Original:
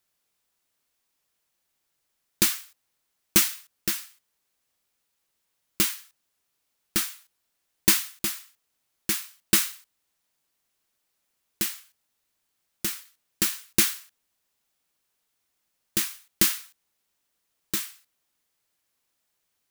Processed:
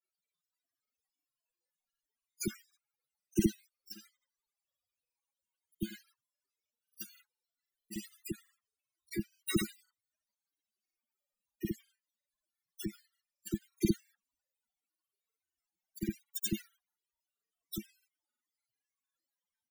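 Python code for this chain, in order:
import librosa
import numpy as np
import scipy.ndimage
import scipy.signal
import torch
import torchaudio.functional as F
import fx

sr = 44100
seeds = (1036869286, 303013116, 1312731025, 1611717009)

y = fx.dispersion(x, sr, late='lows', ms=68.0, hz=660.0)
y = fx.spec_topn(y, sr, count=16)
y = fx.granulator(y, sr, seeds[0], grain_ms=100.0, per_s=20.0, spray_ms=57.0, spread_st=0)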